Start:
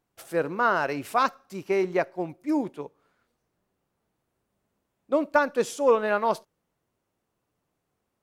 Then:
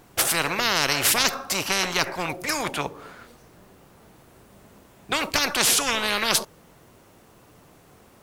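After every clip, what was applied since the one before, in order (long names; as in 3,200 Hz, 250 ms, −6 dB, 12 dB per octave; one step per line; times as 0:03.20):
every bin compressed towards the loudest bin 10 to 1
level +5 dB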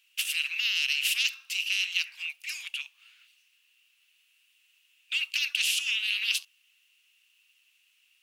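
four-pole ladder high-pass 2,600 Hz, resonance 80%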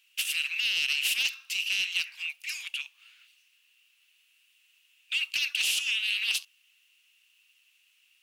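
soft clipping −19 dBFS, distortion −18 dB
level +1 dB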